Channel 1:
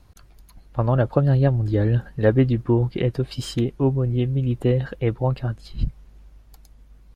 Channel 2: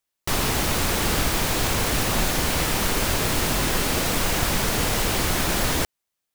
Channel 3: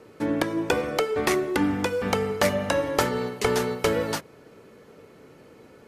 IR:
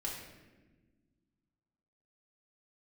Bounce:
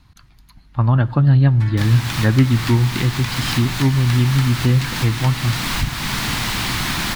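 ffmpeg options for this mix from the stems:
-filter_complex "[0:a]volume=-3dB,asplit=3[link_01][link_02][link_03];[link_02]volume=-16dB[link_04];[1:a]adelay=1500,volume=-3.5dB[link_05];[2:a]highpass=1100,acompressor=threshold=-32dB:ratio=6,adelay=1400,volume=-4dB[link_06];[link_03]apad=whole_len=346003[link_07];[link_05][link_07]sidechaincompress=threshold=-27dB:ratio=8:attack=28:release=446[link_08];[3:a]atrim=start_sample=2205[link_09];[link_04][link_09]afir=irnorm=-1:irlink=0[link_10];[link_01][link_08][link_06][link_10]amix=inputs=4:normalize=0,equalizer=frequency=125:width_type=o:width=1:gain=8,equalizer=frequency=250:width_type=o:width=1:gain=6,equalizer=frequency=500:width_type=o:width=1:gain=-11,equalizer=frequency=1000:width_type=o:width=1:gain=7,equalizer=frequency=2000:width_type=o:width=1:gain=6,equalizer=frequency=4000:width_type=o:width=1:gain=8"

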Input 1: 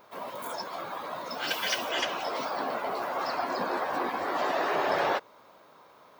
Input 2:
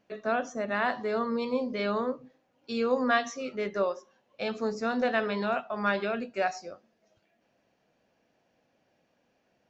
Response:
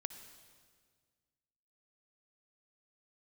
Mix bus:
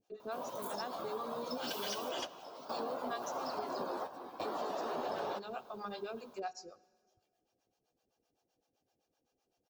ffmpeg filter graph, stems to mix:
-filter_complex "[0:a]adelay=200,volume=-4dB,asplit=2[link_01][link_02];[link_02]volume=-10.5dB[link_03];[1:a]highshelf=frequency=4000:gain=9.5,aecho=1:1:2.5:0.46,acrossover=split=520[link_04][link_05];[link_04]aeval=exprs='val(0)*(1-1/2+1/2*cos(2*PI*7.8*n/s))':channel_layout=same[link_06];[link_05]aeval=exprs='val(0)*(1-1/2-1/2*cos(2*PI*7.8*n/s))':channel_layout=same[link_07];[link_06][link_07]amix=inputs=2:normalize=0,volume=-7.5dB,asplit=3[link_08][link_09][link_10];[link_09]volume=-9.5dB[link_11];[link_10]apad=whole_len=281949[link_12];[link_01][link_12]sidechaingate=range=-33dB:threshold=-58dB:ratio=16:detection=peak[link_13];[2:a]atrim=start_sample=2205[link_14];[link_03][link_11]amix=inputs=2:normalize=0[link_15];[link_15][link_14]afir=irnorm=-1:irlink=0[link_16];[link_13][link_08][link_16]amix=inputs=3:normalize=0,equalizer=frequency=2000:width_type=o:width=0.85:gain=-14.5,acompressor=threshold=-36dB:ratio=4"

